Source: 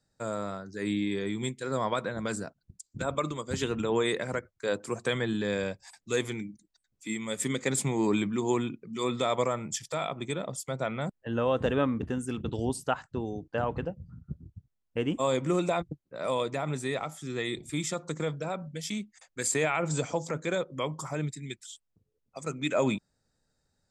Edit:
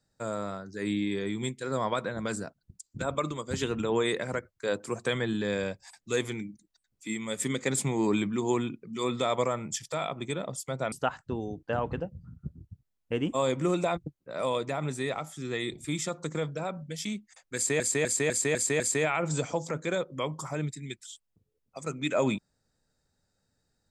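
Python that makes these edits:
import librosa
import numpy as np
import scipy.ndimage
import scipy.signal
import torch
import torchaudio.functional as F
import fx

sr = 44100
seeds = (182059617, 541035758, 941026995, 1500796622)

y = fx.edit(x, sr, fx.cut(start_s=10.92, length_s=1.85),
    fx.repeat(start_s=19.4, length_s=0.25, count=6), tone=tone)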